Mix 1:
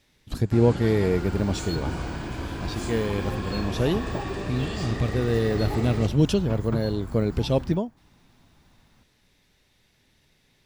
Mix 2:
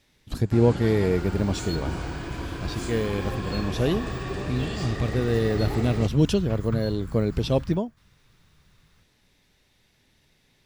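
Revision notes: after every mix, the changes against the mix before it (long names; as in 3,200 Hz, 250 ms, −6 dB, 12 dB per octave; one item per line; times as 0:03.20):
second sound: add inverse Chebyshev band-stop filter 280–720 Hz, stop band 40 dB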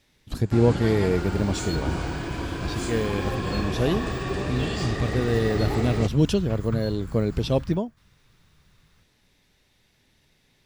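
first sound +3.5 dB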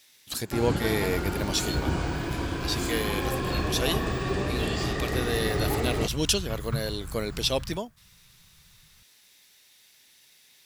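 speech: add spectral tilt +4.5 dB per octave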